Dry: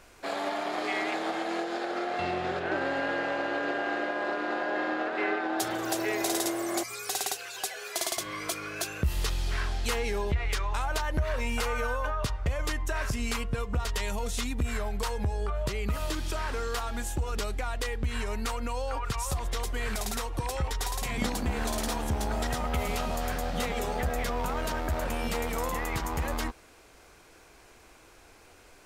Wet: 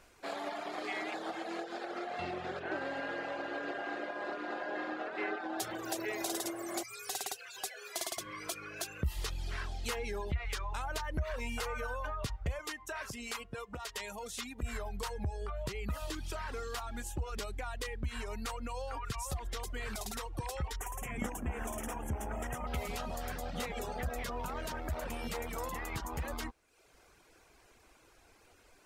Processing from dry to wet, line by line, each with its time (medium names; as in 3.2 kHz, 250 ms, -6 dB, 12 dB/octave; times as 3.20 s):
12.59–14.63 s: high-pass 310 Hz 6 dB/octave
20.76–22.67 s: Butterworth band-stop 4.3 kHz, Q 1.2
whole clip: reverb removal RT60 0.74 s; trim -6 dB